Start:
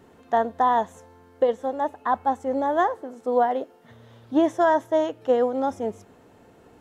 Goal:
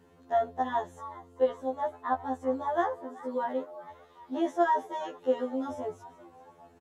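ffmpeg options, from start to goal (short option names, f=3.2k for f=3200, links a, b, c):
-filter_complex "[0:a]asplit=5[a][b][c][d][e];[b]adelay=391,afreqshift=120,volume=-18dB[f];[c]adelay=782,afreqshift=240,volume=-25.3dB[g];[d]adelay=1173,afreqshift=360,volume=-32.7dB[h];[e]adelay=1564,afreqshift=480,volume=-40dB[i];[a][f][g][h][i]amix=inputs=5:normalize=0,afftfilt=real='re*2*eq(mod(b,4),0)':imag='im*2*eq(mod(b,4),0)':win_size=2048:overlap=0.75,volume=-5dB"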